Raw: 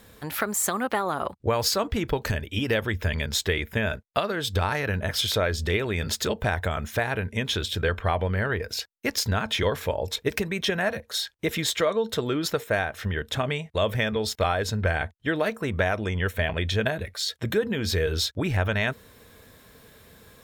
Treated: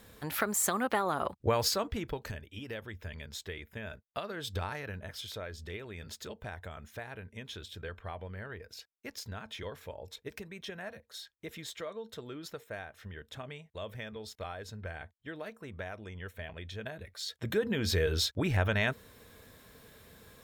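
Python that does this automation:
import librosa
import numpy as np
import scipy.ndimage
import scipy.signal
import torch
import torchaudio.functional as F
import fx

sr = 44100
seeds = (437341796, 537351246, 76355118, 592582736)

y = fx.gain(x, sr, db=fx.line((1.57, -4.0), (2.53, -16.5), (3.78, -16.5), (4.51, -10.0), (5.2, -17.0), (16.77, -17.0), (17.72, -4.0)))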